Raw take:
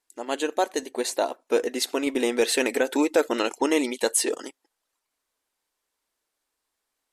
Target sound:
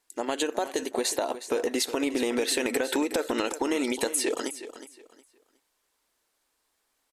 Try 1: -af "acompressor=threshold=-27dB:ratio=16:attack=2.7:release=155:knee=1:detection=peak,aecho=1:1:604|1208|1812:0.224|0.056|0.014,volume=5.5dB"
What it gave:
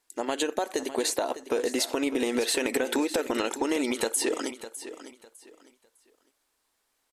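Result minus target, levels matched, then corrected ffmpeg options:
echo 0.24 s late
-af "acompressor=threshold=-27dB:ratio=16:attack=2.7:release=155:knee=1:detection=peak,aecho=1:1:364|728|1092:0.224|0.056|0.014,volume=5.5dB"

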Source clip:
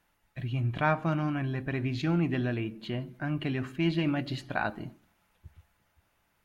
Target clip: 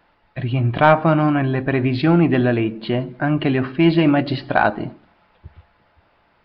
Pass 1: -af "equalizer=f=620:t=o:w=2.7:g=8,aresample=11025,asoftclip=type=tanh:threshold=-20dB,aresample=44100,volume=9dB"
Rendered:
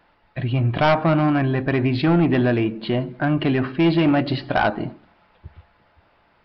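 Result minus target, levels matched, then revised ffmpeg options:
soft clip: distortion +11 dB
-af "equalizer=f=620:t=o:w=2.7:g=8,aresample=11025,asoftclip=type=tanh:threshold=-9.5dB,aresample=44100,volume=9dB"

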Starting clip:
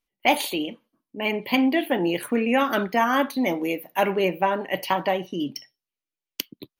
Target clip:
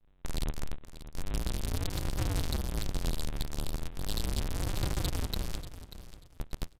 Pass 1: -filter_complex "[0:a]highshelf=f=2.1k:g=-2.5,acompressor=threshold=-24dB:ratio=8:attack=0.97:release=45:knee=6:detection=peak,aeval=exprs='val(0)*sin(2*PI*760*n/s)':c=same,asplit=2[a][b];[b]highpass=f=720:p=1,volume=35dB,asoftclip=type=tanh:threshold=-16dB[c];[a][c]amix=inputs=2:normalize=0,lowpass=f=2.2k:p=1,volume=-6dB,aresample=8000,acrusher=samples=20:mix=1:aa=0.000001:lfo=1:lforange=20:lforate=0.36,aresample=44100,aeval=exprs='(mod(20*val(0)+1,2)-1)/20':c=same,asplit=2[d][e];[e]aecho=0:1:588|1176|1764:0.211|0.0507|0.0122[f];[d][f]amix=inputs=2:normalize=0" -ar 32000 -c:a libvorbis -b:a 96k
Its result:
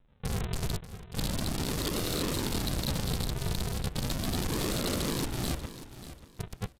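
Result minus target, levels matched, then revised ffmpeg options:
decimation with a swept rate: distortion -10 dB; compressor: peak gain reduction -5.5 dB
-filter_complex "[0:a]highshelf=f=2.1k:g=-2.5,acompressor=threshold=-30.5dB:ratio=8:attack=0.97:release=45:knee=6:detection=peak,aeval=exprs='val(0)*sin(2*PI*760*n/s)':c=same,asplit=2[a][b];[b]highpass=f=720:p=1,volume=35dB,asoftclip=type=tanh:threshold=-16dB[c];[a][c]amix=inputs=2:normalize=0,lowpass=f=2.2k:p=1,volume=-6dB,aresample=8000,acrusher=samples=73:mix=1:aa=0.000001:lfo=1:lforange=73:lforate=0.36,aresample=44100,aeval=exprs='(mod(20*val(0)+1,2)-1)/20':c=same,asplit=2[d][e];[e]aecho=0:1:588|1176|1764:0.211|0.0507|0.0122[f];[d][f]amix=inputs=2:normalize=0" -ar 32000 -c:a libvorbis -b:a 96k

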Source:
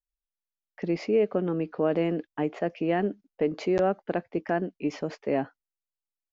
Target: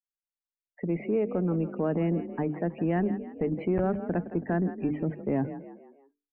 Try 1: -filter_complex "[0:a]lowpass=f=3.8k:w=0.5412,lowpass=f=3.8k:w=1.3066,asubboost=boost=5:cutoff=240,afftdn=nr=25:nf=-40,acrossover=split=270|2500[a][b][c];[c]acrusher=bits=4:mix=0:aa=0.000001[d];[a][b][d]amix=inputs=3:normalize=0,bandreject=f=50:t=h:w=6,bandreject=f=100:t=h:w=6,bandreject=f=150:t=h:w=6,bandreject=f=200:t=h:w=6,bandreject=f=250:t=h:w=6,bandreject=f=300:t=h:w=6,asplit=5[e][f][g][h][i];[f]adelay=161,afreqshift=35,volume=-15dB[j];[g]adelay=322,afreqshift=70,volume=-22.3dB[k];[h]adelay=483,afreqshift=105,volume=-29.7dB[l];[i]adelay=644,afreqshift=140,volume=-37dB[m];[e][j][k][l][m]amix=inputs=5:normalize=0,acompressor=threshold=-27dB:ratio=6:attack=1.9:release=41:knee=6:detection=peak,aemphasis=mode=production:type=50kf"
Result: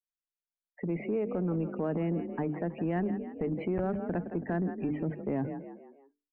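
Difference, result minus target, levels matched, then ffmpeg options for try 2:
compressor: peak gain reduction +5 dB
-filter_complex "[0:a]lowpass=f=3.8k:w=0.5412,lowpass=f=3.8k:w=1.3066,asubboost=boost=5:cutoff=240,afftdn=nr=25:nf=-40,acrossover=split=270|2500[a][b][c];[c]acrusher=bits=4:mix=0:aa=0.000001[d];[a][b][d]amix=inputs=3:normalize=0,bandreject=f=50:t=h:w=6,bandreject=f=100:t=h:w=6,bandreject=f=150:t=h:w=6,bandreject=f=200:t=h:w=6,bandreject=f=250:t=h:w=6,bandreject=f=300:t=h:w=6,asplit=5[e][f][g][h][i];[f]adelay=161,afreqshift=35,volume=-15dB[j];[g]adelay=322,afreqshift=70,volume=-22.3dB[k];[h]adelay=483,afreqshift=105,volume=-29.7dB[l];[i]adelay=644,afreqshift=140,volume=-37dB[m];[e][j][k][l][m]amix=inputs=5:normalize=0,acompressor=threshold=-21dB:ratio=6:attack=1.9:release=41:knee=6:detection=peak,aemphasis=mode=production:type=50kf"

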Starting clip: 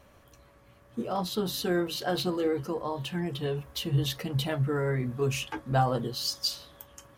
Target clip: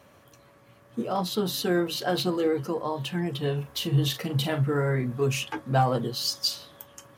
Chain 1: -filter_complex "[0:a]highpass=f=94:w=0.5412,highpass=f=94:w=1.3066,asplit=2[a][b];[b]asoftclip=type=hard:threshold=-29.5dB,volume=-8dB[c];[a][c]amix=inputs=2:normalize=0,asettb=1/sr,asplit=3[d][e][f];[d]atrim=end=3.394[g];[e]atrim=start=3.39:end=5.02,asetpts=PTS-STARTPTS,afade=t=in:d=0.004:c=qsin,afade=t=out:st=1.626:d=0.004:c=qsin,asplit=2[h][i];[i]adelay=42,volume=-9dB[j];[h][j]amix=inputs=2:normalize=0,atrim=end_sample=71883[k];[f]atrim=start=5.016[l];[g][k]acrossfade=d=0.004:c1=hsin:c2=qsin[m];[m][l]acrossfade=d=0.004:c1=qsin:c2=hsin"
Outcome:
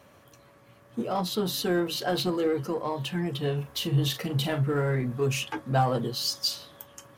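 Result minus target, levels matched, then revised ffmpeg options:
hard clip: distortion +14 dB
-filter_complex "[0:a]highpass=f=94:w=0.5412,highpass=f=94:w=1.3066,asplit=2[a][b];[b]asoftclip=type=hard:threshold=-19.5dB,volume=-8dB[c];[a][c]amix=inputs=2:normalize=0,asettb=1/sr,asplit=3[d][e][f];[d]atrim=end=3.394[g];[e]atrim=start=3.39:end=5.02,asetpts=PTS-STARTPTS,afade=t=in:d=0.004:c=qsin,afade=t=out:st=1.626:d=0.004:c=qsin,asplit=2[h][i];[i]adelay=42,volume=-9dB[j];[h][j]amix=inputs=2:normalize=0,atrim=end_sample=71883[k];[f]atrim=start=5.016[l];[g][k]acrossfade=d=0.004:c1=hsin:c2=qsin[m];[m][l]acrossfade=d=0.004:c1=qsin:c2=hsin"

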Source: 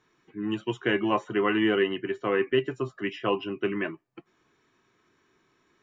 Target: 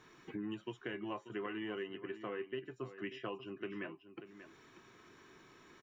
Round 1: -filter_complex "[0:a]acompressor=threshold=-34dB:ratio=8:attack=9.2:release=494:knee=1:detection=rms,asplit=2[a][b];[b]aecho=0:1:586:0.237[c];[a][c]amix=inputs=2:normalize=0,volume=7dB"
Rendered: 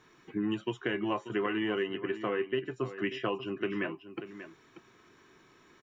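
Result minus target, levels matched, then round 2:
compressor: peak gain reduction -10 dB
-filter_complex "[0:a]acompressor=threshold=-45.5dB:ratio=8:attack=9.2:release=494:knee=1:detection=rms,asplit=2[a][b];[b]aecho=0:1:586:0.237[c];[a][c]amix=inputs=2:normalize=0,volume=7dB"

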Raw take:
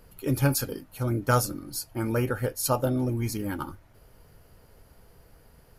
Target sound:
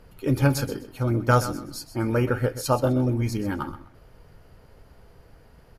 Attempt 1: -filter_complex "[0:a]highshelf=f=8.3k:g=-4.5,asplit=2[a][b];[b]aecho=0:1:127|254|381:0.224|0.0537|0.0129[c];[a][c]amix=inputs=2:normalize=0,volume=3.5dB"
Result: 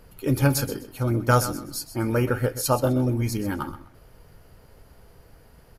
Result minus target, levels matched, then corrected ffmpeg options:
8000 Hz band +5.0 dB
-filter_complex "[0:a]highshelf=f=8.3k:g=-15.5,asplit=2[a][b];[b]aecho=0:1:127|254|381:0.224|0.0537|0.0129[c];[a][c]amix=inputs=2:normalize=0,volume=3.5dB"

